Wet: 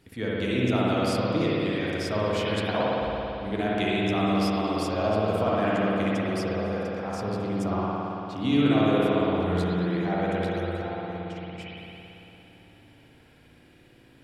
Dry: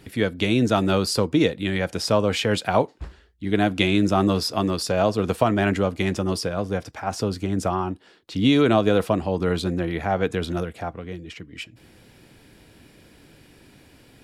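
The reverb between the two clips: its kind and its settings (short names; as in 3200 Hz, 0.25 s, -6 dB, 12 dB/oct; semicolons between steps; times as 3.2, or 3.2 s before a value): spring tank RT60 3.3 s, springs 56 ms, chirp 65 ms, DRR -7 dB; gain -11 dB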